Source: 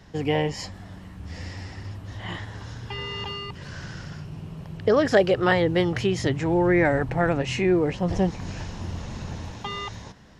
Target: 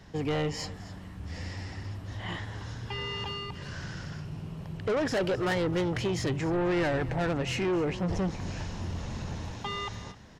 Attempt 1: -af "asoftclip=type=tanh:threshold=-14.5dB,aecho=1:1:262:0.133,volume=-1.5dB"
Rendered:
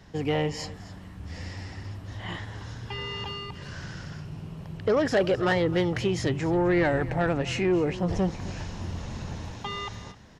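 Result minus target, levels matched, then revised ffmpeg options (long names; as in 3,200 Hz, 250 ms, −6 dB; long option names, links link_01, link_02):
soft clipping: distortion −8 dB
-af "asoftclip=type=tanh:threshold=-23dB,aecho=1:1:262:0.133,volume=-1.5dB"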